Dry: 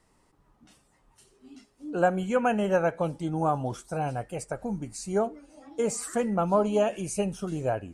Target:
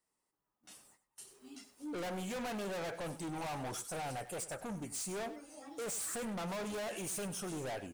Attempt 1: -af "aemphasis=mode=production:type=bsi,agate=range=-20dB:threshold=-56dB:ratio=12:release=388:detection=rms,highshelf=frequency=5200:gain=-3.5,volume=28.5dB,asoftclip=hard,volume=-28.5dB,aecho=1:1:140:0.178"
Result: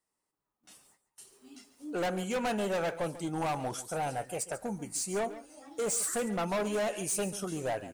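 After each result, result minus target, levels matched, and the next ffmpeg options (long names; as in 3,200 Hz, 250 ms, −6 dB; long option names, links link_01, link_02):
echo 42 ms late; gain into a clipping stage and back: distortion −5 dB
-af "aemphasis=mode=production:type=bsi,agate=range=-20dB:threshold=-56dB:ratio=12:release=388:detection=rms,highshelf=frequency=5200:gain=-3.5,volume=28.5dB,asoftclip=hard,volume=-28.5dB,aecho=1:1:98:0.178"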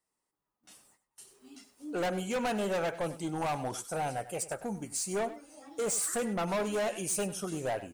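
gain into a clipping stage and back: distortion −5 dB
-af "aemphasis=mode=production:type=bsi,agate=range=-20dB:threshold=-56dB:ratio=12:release=388:detection=rms,highshelf=frequency=5200:gain=-3.5,volume=38.5dB,asoftclip=hard,volume=-38.5dB,aecho=1:1:98:0.178"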